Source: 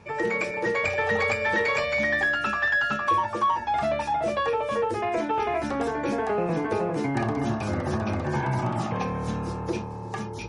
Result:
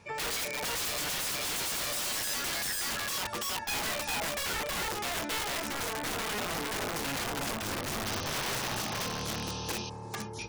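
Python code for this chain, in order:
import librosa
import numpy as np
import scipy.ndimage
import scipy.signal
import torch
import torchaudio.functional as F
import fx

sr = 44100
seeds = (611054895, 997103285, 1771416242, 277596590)

y = fx.high_shelf(x, sr, hz=3000.0, db=11.0)
y = fx.hum_notches(y, sr, base_hz=60, count=7)
y = (np.mod(10.0 ** (22.0 / 20.0) * y + 1.0, 2.0) - 1.0) / 10.0 ** (22.0 / 20.0)
y = fx.spec_paint(y, sr, seeds[0], shape='noise', start_s=8.05, length_s=1.85, low_hz=2400.0, high_hz=6400.0, level_db=-36.0)
y = y * 10.0 ** (-6.5 / 20.0)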